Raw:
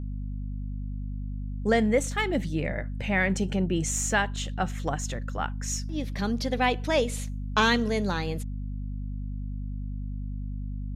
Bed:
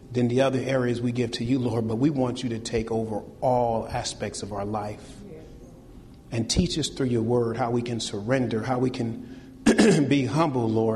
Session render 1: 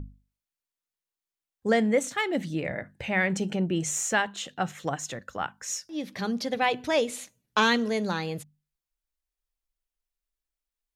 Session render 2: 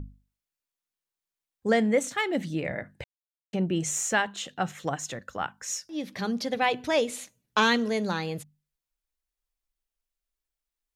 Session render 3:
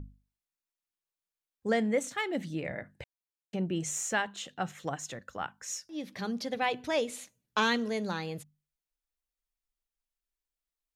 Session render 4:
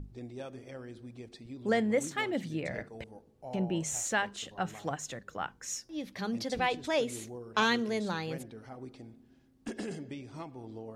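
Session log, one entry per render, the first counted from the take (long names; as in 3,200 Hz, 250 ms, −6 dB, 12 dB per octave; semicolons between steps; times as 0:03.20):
mains-hum notches 50/100/150/200/250 Hz
0:03.04–0:03.53: silence
level −5 dB
mix in bed −21 dB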